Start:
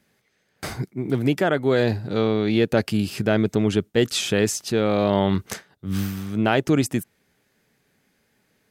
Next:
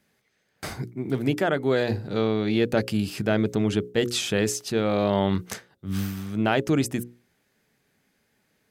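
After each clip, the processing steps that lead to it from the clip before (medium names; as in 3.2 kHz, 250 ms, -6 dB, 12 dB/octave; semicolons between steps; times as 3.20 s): hum notches 60/120/180/240/300/360/420/480/540 Hz; trim -2.5 dB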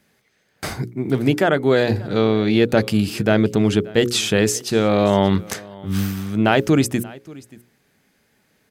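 delay 581 ms -22 dB; trim +6.5 dB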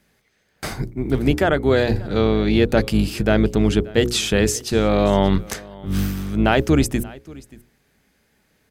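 octave divider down 2 oct, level -4 dB; trim -1 dB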